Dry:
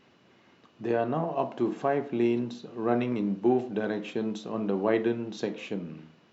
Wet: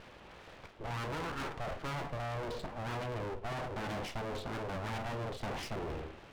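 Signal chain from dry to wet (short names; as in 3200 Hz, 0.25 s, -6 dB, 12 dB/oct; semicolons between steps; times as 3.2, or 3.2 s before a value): reverse; compressor 6:1, threshold -35 dBFS, peak gain reduction 15.5 dB; reverse; air absorption 320 m; full-wave rectifier; tube stage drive 36 dB, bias 0.6; gain +16 dB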